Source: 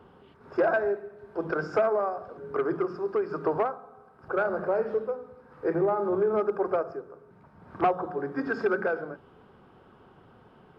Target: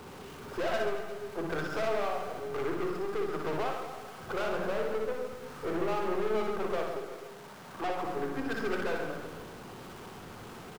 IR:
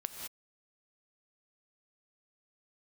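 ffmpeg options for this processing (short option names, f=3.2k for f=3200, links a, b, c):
-filter_complex "[0:a]aeval=exprs='val(0)+0.5*0.00891*sgn(val(0))':c=same,asettb=1/sr,asplit=3[a][b][c];[a]atrim=end=6.944[d];[b]atrim=start=6.94:end=8.04,asetpts=PTS-STARTPTS,afade=t=in:d=0.004:c=qsin,afade=t=out:st=1.096:d=0.004:c=qsin,highpass=f=360:p=1[e];[c]atrim=start=8.036[f];[d][e]acrossfade=d=0.004:c1=hsin:c2=qsin[g];[g][f]acrossfade=d=0.004:c1=qsin:c2=hsin,aeval=exprs='(tanh(28.2*val(0)+0.45)-tanh(0.45))/28.2':c=same,aecho=1:1:60|135|228.8|345.9|492.4:0.631|0.398|0.251|0.158|0.1,volume=-1.5dB"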